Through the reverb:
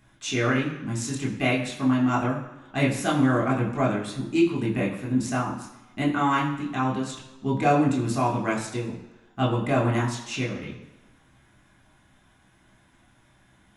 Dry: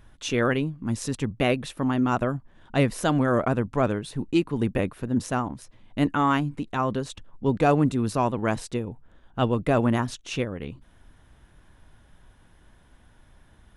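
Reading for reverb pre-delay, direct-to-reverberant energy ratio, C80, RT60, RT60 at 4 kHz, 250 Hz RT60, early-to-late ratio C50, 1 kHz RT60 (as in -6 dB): 16 ms, -4.0 dB, 9.0 dB, 1.1 s, 1.0 s, 0.95 s, 7.0 dB, 1.1 s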